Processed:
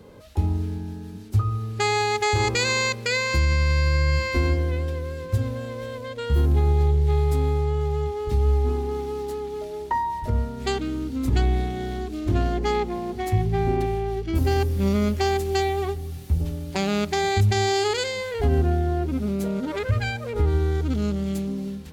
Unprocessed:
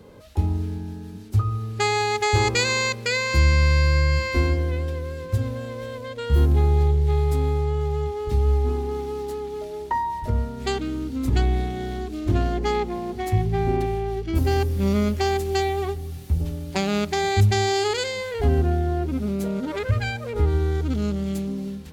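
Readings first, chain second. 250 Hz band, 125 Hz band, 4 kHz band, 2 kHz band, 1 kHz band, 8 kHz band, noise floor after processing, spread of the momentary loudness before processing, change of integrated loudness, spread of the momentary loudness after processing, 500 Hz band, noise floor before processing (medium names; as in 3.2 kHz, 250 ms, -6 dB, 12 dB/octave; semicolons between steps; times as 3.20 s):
-0.5 dB, -1.0 dB, -0.5 dB, -0.5 dB, -0.5 dB, -0.5 dB, -36 dBFS, 10 LU, -0.5 dB, 9 LU, -0.5 dB, -36 dBFS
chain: peak limiter -12 dBFS, peak gain reduction 4.5 dB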